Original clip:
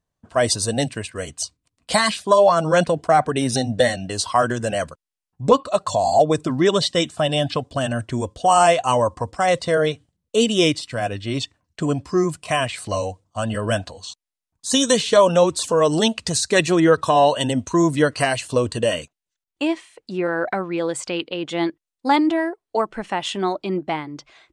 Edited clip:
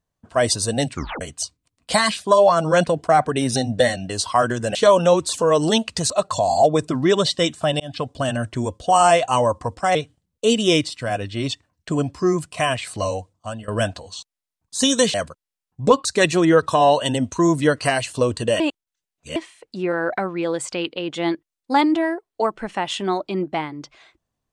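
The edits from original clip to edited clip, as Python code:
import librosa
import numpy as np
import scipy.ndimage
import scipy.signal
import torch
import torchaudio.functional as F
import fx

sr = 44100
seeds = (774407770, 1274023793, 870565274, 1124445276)

y = fx.edit(x, sr, fx.tape_stop(start_s=0.92, length_s=0.29),
    fx.swap(start_s=4.75, length_s=0.91, other_s=15.05, other_length_s=1.35),
    fx.fade_in_span(start_s=7.36, length_s=0.39, curve='qsin'),
    fx.cut(start_s=9.51, length_s=0.35),
    fx.fade_out_to(start_s=13.03, length_s=0.56, curve='qsin', floor_db=-20.0),
    fx.reverse_span(start_s=18.95, length_s=0.76), tone=tone)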